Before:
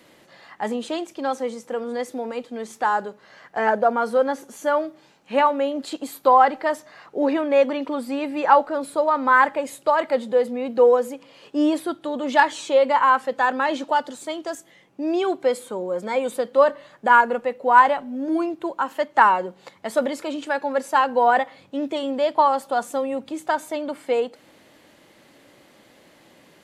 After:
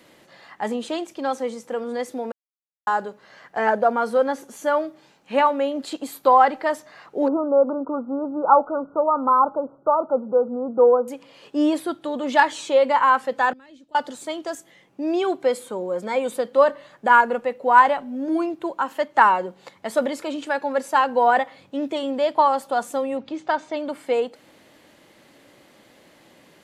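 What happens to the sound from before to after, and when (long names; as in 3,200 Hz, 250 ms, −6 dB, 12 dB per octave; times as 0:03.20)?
0:02.32–0:02.87: silence
0:07.28–0:11.08: linear-phase brick-wall low-pass 1,500 Hz
0:13.53–0:13.95: guitar amp tone stack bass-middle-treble 10-0-1
0:23.17–0:23.77: low-pass filter 5,500 Hz 24 dB per octave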